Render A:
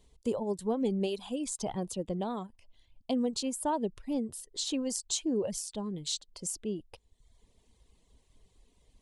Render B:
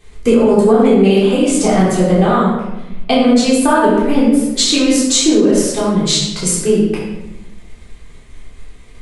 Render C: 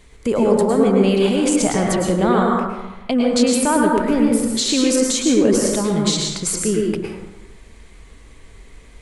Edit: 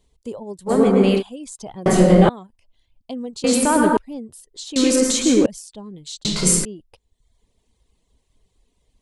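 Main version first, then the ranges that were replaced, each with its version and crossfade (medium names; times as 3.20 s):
A
0.69–1.20 s: from C, crossfade 0.06 s
1.86–2.29 s: from B
3.44–3.97 s: from C
4.76–5.46 s: from C
6.25–6.65 s: from B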